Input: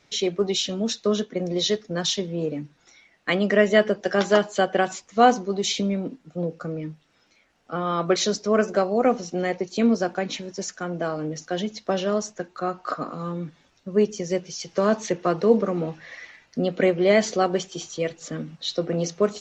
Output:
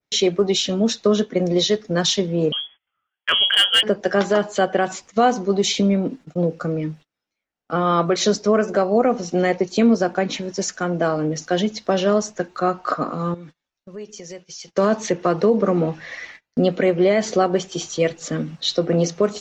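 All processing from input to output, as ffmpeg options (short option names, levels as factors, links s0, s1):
-filter_complex "[0:a]asettb=1/sr,asplit=3[s0][s1][s2];[s0]atrim=end=2.524[s3];[s1]atrim=start=2.52:end=3.83,asetpts=PTS-STARTPTS,afade=t=in:d=0.004:c=qsin,afade=t=out:st=1.306:d=0.004:c=qsin,lowpass=f=3000:t=q:w=0.5098,lowpass=f=3000:t=q:w=0.6013,lowpass=f=3000:t=q:w=0.9,lowpass=f=3000:t=q:w=2.563,afreqshift=-3500,asoftclip=type=hard:threshold=0.266[s4];[s2]atrim=start=3.826[s5];[s3][s4]acrossfade=d=0.004:c1=hsin:c2=qsin[s6];[s6][s5]acrossfade=d=0.004:c1=qsin:c2=hsin,asettb=1/sr,asplit=3[s7][s8][s9];[s7]atrim=end=13.344[s10];[s8]atrim=start=13.34:end=14.68,asetpts=PTS-STARTPTS,afade=t=in:d=0.004:c=qsin,afade=t=out:st=1.336:d=0.004:c=qsin,equalizer=f=160:w=0.3:g=-7.5,acompressor=threshold=0.00708:ratio=3:attack=3.2:release=140:knee=1:detection=peak[s11];[s9]atrim=start=14.676[s12];[s10][s11]acrossfade=d=0.004:c1=hsin:c2=qsin[s13];[s13][s12]acrossfade=d=0.004:c1=qsin:c2=hsin,agate=range=0.0355:threshold=0.00501:ratio=16:detection=peak,alimiter=limit=0.188:level=0:latency=1:release=158,adynamicequalizer=threshold=0.01:dfrequency=2100:dqfactor=0.7:tfrequency=2100:tqfactor=0.7:attack=5:release=100:ratio=0.375:range=2.5:mode=cutabove:tftype=highshelf,volume=2.24"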